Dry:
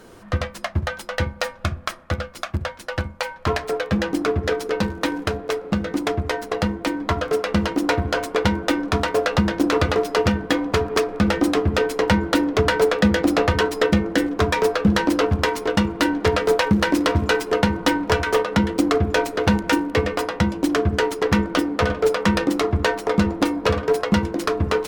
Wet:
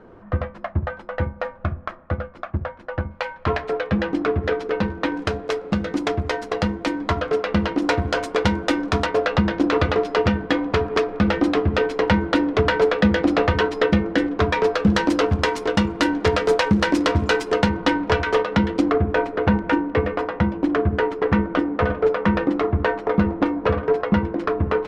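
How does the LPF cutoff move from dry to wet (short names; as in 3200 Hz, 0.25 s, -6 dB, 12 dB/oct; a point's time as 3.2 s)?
1400 Hz
from 3.11 s 3000 Hz
from 5.17 s 6500 Hz
from 7.19 s 3900 Hz
from 7.82 s 7500 Hz
from 9.06 s 3900 Hz
from 14.75 s 7500 Hz
from 17.69 s 4200 Hz
from 18.91 s 2000 Hz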